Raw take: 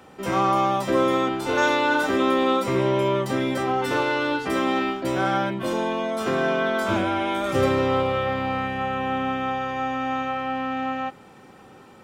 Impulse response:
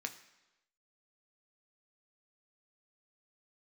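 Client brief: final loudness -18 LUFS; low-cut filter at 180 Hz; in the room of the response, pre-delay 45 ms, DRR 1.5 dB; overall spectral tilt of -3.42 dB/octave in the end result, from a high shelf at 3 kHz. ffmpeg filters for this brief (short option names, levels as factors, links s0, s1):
-filter_complex "[0:a]highpass=180,highshelf=f=3000:g=7.5,asplit=2[s0][s1];[1:a]atrim=start_sample=2205,adelay=45[s2];[s1][s2]afir=irnorm=-1:irlink=0,volume=0.841[s3];[s0][s3]amix=inputs=2:normalize=0,volume=1.41"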